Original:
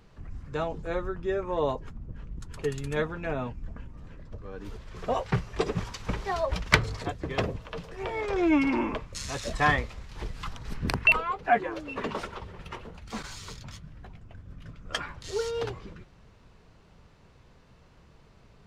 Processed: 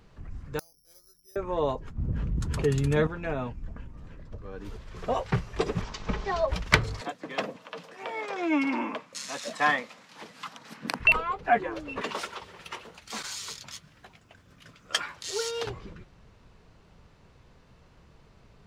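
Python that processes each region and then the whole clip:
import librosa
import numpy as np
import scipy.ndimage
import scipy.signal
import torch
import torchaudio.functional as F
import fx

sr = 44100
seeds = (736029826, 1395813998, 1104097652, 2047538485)

y = fx.chain(x, sr, fx.peak_eq(hz=2300.0, db=7.5, octaves=0.28),
    fx.gate_flip(shuts_db=-33.0, range_db=-36),
    fx.resample_bad(factor=8, down='filtered', up='zero_stuff'), at=(0.59, 1.36))
y = fx.chain(y, sr, fx.highpass(hz=49.0, slope=12),
    fx.low_shelf(hz=400.0, db=7.0),
    fx.env_flatten(amount_pct=50), at=(1.98, 3.07))
y = fx.lowpass(y, sr, hz=6800.0, slope=24, at=(5.81, 6.46), fade=0.02)
y = fx.comb(y, sr, ms=4.7, depth=0.42, at=(5.81, 6.46), fade=0.02)
y = fx.dmg_buzz(y, sr, base_hz=50.0, harmonics=24, level_db=-50.0, tilt_db=-1, odd_only=False, at=(5.81, 6.46), fade=0.02)
y = fx.chain(y, sr, fx.highpass(hz=220.0, slope=24),
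    fx.peak_eq(hz=380.0, db=-11.5, octaves=0.35), at=(7.01, 11.0))
y = fx.chain(y, sr, fx.highpass(hz=430.0, slope=6),
    fx.high_shelf(hz=2600.0, db=9.5), at=(12.01, 15.67))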